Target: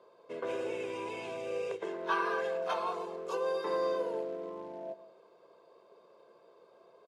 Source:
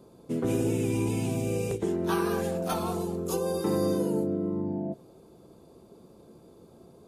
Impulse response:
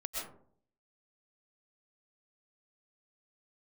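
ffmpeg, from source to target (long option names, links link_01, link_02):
-filter_complex "[0:a]aecho=1:1:1.9:0.58,acrusher=bits=7:mode=log:mix=0:aa=0.000001,highpass=690,lowpass=2700,asplit=2[link_01][link_02];[1:a]atrim=start_sample=2205[link_03];[link_02][link_03]afir=irnorm=-1:irlink=0,volume=-17dB[link_04];[link_01][link_04]amix=inputs=2:normalize=0"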